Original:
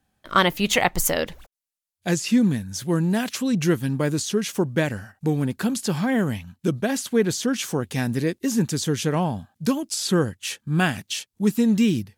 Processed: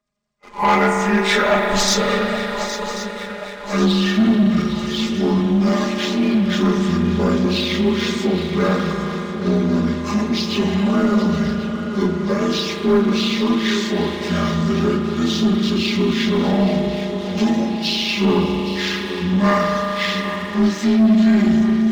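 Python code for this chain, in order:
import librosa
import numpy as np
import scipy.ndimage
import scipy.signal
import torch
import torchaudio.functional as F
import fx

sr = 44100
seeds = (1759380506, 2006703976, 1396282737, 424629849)

y = fx.partial_stretch(x, sr, pct=82)
y = fx.hum_notches(y, sr, base_hz=60, count=7)
y = fx.stretch_grains(y, sr, factor=1.8, grain_ms=22.0)
y = fx.echo_swing(y, sr, ms=1087, ratio=3, feedback_pct=53, wet_db=-13)
y = fx.rev_spring(y, sr, rt60_s=4.0, pass_ms=(36,), chirp_ms=30, drr_db=3.0)
y = fx.leveller(y, sr, passes=2)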